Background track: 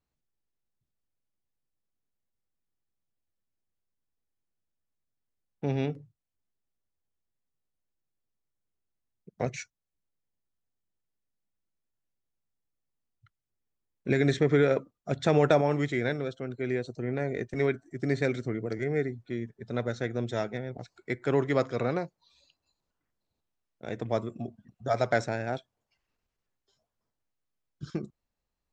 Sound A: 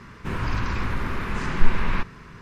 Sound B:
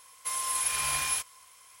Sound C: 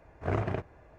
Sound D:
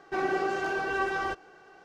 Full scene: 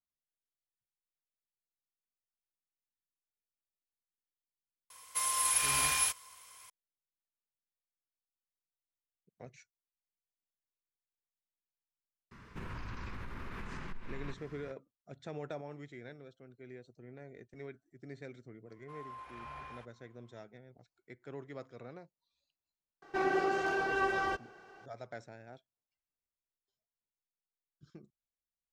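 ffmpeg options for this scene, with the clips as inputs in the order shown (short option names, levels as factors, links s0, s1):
-filter_complex "[2:a]asplit=2[s0][s1];[0:a]volume=0.1[s2];[1:a]acompressor=threshold=0.0447:ratio=6:attack=3.2:release=140:knee=1:detection=peak[s3];[s1]lowpass=1200[s4];[s0]atrim=end=1.8,asetpts=PTS-STARTPTS,volume=0.944,afade=t=in:d=0.004:c=hsin,afade=t=out:st=1.796:d=0.004:c=hsin,adelay=4900[s5];[s3]atrim=end=2.41,asetpts=PTS-STARTPTS,volume=0.282,afade=t=in:d=0.004:c=hsin,afade=t=out:st=2.406:d=0.004:c=hsin,adelay=12310[s6];[s4]atrim=end=1.8,asetpts=PTS-STARTPTS,volume=0.355,afade=t=in:d=0.1,afade=t=out:st=1.7:d=0.1,adelay=18630[s7];[4:a]atrim=end=1.84,asetpts=PTS-STARTPTS,volume=0.75,afade=t=in:d=0.004:c=hsin,afade=t=out:st=1.836:d=0.004:c=hsin,adelay=23020[s8];[s2][s5][s6][s7][s8]amix=inputs=5:normalize=0"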